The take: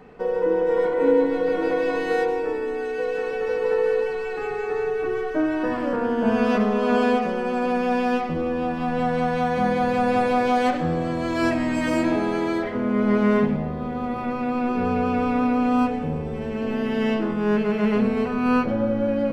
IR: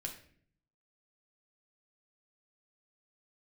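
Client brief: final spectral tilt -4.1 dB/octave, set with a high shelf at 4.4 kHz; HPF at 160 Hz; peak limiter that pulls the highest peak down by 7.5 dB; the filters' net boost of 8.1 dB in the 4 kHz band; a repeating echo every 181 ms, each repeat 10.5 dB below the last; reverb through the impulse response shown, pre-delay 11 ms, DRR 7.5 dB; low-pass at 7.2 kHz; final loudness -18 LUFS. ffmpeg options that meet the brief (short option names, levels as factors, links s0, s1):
-filter_complex "[0:a]highpass=160,lowpass=7200,equalizer=f=4000:t=o:g=8.5,highshelf=f=4400:g=5,alimiter=limit=0.168:level=0:latency=1,aecho=1:1:181|362|543:0.299|0.0896|0.0269,asplit=2[s0][s1];[1:a]atrim=start_sample=2205,adelay=11[s2];[s1][s2]afir=irnorm=-1:irlink=0,volume=0.501[s3];[s0][s3]amix=inputs=2:normalize=0,volume=1.78"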